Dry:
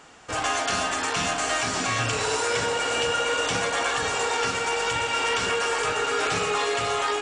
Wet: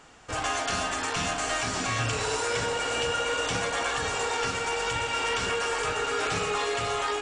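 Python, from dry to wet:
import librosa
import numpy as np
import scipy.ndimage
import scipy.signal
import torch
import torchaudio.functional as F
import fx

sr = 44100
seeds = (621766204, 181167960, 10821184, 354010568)

y = fx.low_shelf(x, sr, hz=83.0, db=10.5)
y = F.gain(torch.from_numpy(y), -3.5).numpy()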